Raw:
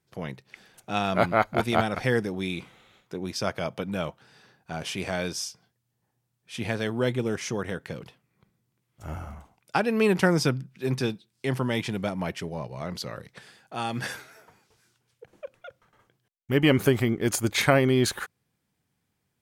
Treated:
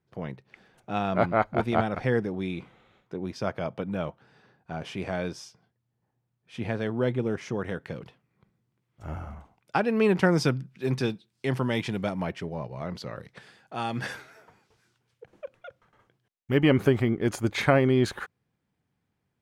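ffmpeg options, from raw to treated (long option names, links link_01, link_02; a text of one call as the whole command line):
ffmpeg -i in.wav -af "asetnsamples=nb_out_samples=441:pad=0,asendcmd='7.61 lowpass f 2500;10.33 lowpass f 5000;12.25 lowpass f 2100;13.18 lowpass f 3600;16.59 lowpass f 2000',lowpass=frequency=1400:poles=1" out.wav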